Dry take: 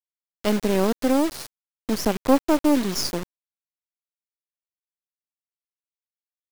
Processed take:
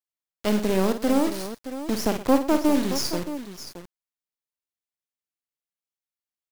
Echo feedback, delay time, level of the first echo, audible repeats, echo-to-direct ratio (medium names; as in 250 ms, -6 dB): no regular repeats, 52 ms, -9.0 dB, 3, -6.5 dB